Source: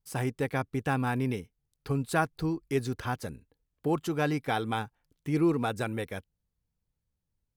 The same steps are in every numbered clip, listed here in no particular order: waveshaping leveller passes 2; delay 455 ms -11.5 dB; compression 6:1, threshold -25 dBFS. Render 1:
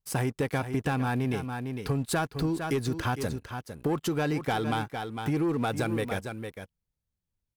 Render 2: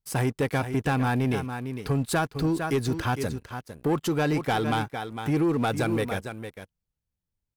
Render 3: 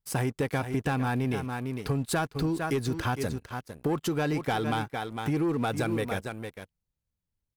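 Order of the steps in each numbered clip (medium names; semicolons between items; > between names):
waveshaping leveller > delay > compression; delay > compression > waveshaping leveller; delay > waveshaping leveller > compression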